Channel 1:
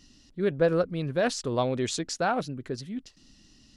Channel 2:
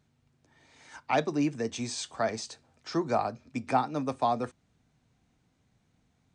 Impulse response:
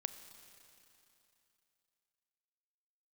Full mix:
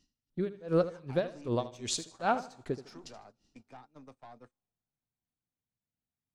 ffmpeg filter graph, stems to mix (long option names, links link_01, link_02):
-filter_complex "[0:a]equalizer=frequency=1700:width_type=o:width=0.72:gain=-4,aeval=exprs='val(0)*pow(10,-36*(0.5-0.5*cos(2*PI*2.6*n/s))/20)':channel_layout=same,volume=-0.5dB,asplit=3[link_01][link_02][link_03];[link_02]volume=-12.5dB[link_04];[link_03]volume=-12.5dB[link_05];[1:a]acompressor=threshold=-40dB:ratio=2.5,aeval=exprs='(tanh(44.7*val(0)+0.4)-tanh(0.4))/44.7':channel_layout=same,volume=-11dB,asplit=2[link_06][link_07];[link_07]volume=-17.5dB[link_08];[2:a]atrim=start_sample=2205[link_09];[link_04][link_08]amix=inputs=2:normalize=0[link_10];[link_10][link_09]afir=irnorm=-1:irlink=0[link_11];[link_05]aecho=0:1:77|154|231|308:1|0.27|0.0729|0.0197[link_12];[link_01][link_06][link_11][link_12]amix=inputs=4:normalize=0,agate=range=-15dB:threshold=-52dB:ratio=16:detection=peak"